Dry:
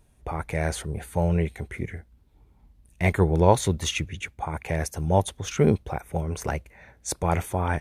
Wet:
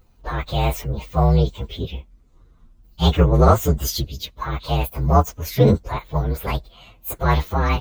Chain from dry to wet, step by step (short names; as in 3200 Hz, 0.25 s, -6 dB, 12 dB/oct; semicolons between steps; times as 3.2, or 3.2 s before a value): inharmonic rescaling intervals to 123%; gain +8 dB